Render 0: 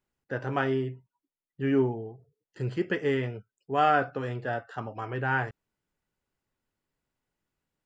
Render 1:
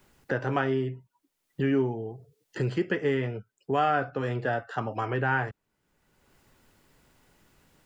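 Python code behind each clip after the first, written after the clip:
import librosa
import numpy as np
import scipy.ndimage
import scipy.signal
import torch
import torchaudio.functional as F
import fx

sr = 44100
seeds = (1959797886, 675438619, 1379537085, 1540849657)

y = fx.band_squash(x, sr, depth_pct=70)
y = y * librosa.db_to_amplitude(1.0)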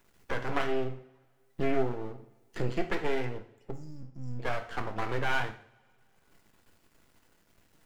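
y = fx.spec_erase(x, sr, start_s=3.71, length_s=0.69, low_hz=230.0, high_hz=4800.0)
y = np.maximum(y, 0.0)
y = fx.rev_double_slope(y, sr, seeds[0], early_s=0.49, late_s=2.2, knee_db=-25, drr_db=5.5)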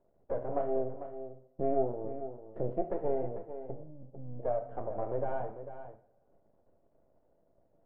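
y = fx.lowpass_res(x, sr, hz=610.0, q=4.9)
y = y + 10.0 ** (-11.0 / 20.0) * np.pad(y, (int(447 * sr / 1000.0), 0))[:len(y)]
y = y * librosa.db_to_amplitude(-6.5)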